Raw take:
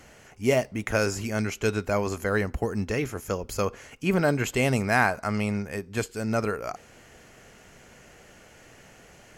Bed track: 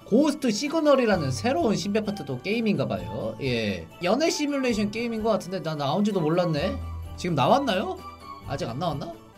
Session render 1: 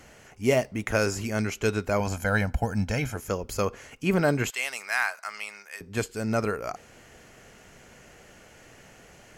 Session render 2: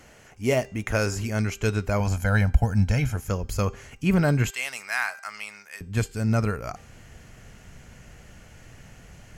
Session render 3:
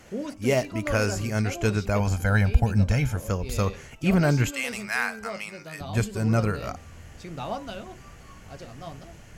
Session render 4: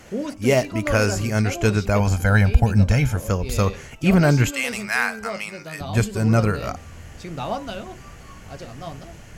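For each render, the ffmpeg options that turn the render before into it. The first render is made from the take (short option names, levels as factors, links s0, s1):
-filter_complex "[0:a]asettb=1/sr,asplit=3[s0][s1][s2];[s0]atrim=end=2.004[s3];[s1]atrim=start=2:end=3.16,asetpts=PTS-STARTPTS,afade=t=in:d=0.004:c=qsin,afade=t=out:st=1.156:d=0.004:c=qsin,aecho=1:1:1.3:0.75,atrim=end_sample=51156[s4];[s2]atrim=start=3.156[s5];[s3][s4]acrossfade=d=0.004:c1=hsin:c2=qsin[s6];[s6][s5]acrossfade=d=0.004:c1=qsin:c2=hsin,asettb=1/sr,asplit=3[s7][s8][s9];[s7]atrim=end=4.504[s10];[s8]atrim=start=4.5:end=5.81,asetpts=PTS-STARTPTS,afade=t=in:d=0.004:c=qsin,afade=t=out:st=1.306:d=0.004:c=qsin,highpass=1400[s11];[s9]atrim=start=5.806[s12];[s10][s11]acrossfade=d=0.004:c1=hsin:c2=qsin[s13];[s13][s12]acrossfade=d=0.004:c1=qsin:c2=hsin"
-af "bandreject=f=395.5:t=h:w=4,bandreject=f=791:t=h:w=4,bandreject=f=1186.5:t=h:w=4,bandreject=f=1582:t=h:w=4,bandreject=f=1977.5:t=h:w=4,bandreject=f=2373:t=h:w=4,bandreject=f=2768.5:t=h:w=4,bandreject=f=3164:t=h:w=4,bandreject=f=3559.5:t=h:w=4,bandreject=f=3955:t=h:w=4,bandreject=f=4350.5:t=h:w=4,bandreject=f=4746:t=h:w=4,bandreject=f=5141.5:t=h:w=4,bandreject=f=5537:t=h:w=4,bandreject=f=5932.5:t=h:w=4,bandreject=f=6328:t=h:w=4,bandreject=f=6723.5:t=h:w=4,bandreject=f=7119:t=h:w=4,bandreject=f=7514.5:t=h:w=4,bandreject=f=7910:t=h:w=4,bandreject=f=8305.5:t=h:w=4,bandreject=f=8701:t=h:w=4,asubboost=boost=4:cutoff=180"
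-filter_complex "[1:a]volume=0.237[s0];[0:a][s0]amix=inputs=2:normalize=0"
-af "volume=1.78,alimiter=limit=0.794:level=0:latency=1"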